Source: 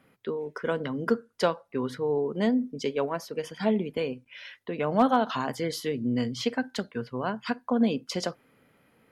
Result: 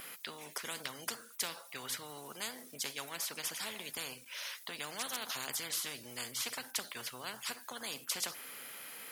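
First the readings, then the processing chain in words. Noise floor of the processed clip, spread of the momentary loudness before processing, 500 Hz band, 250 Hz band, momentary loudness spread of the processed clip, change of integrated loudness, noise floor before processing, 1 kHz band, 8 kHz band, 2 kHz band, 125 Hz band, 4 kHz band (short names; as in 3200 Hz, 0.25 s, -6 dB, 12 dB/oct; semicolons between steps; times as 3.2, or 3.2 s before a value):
-55 dBFS, 9 LU, -22.0 dB, -25.5 dB, 7 LU, -10.5 dB, -66 dBFS, -15.0 dB, +7.5 dB, -5.5 dB, -21.0 dB, -0.5 dB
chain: differentiator; spectral compressor 4:1; gain +2.5 dB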